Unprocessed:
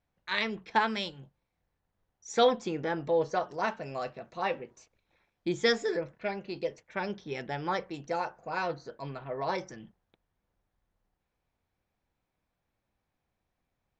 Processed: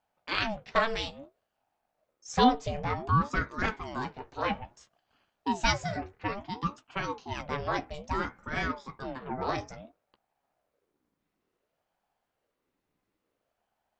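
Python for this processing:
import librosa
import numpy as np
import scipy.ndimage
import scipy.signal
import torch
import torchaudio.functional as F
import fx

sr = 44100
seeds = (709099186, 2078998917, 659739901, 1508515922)

y = fx.doubler(x, sr, ms=14.0, db=-9.5)
y = fx.dynamic_eq(y, sr, hz=530.0, q=0.91, threshold_db=-43.0, ratio=4.0, max_db=-5, at=(5.75, 6.25))
y = fx.ring_lfo(y, sr, carrier_hz=500.0, swing_pct=55, hz=0.58)
y = y * librosa.db_to_amplitude(3.0)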